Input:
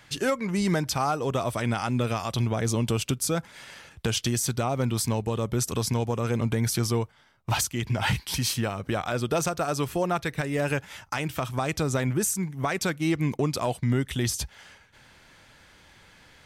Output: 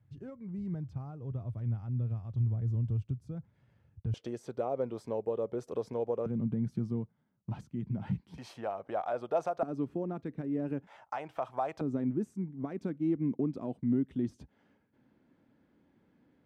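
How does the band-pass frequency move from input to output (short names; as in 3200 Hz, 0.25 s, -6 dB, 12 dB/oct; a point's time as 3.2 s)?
band-pass, Q 2.6
100 Hz
from 4.14 s 500 Hz
from 6.26 s 190 Hz
from 8.38 s 680 Hz
from 9.63 s 260 Hz
from 10.87 s 730 Hz
from 11.81 s 260 Hz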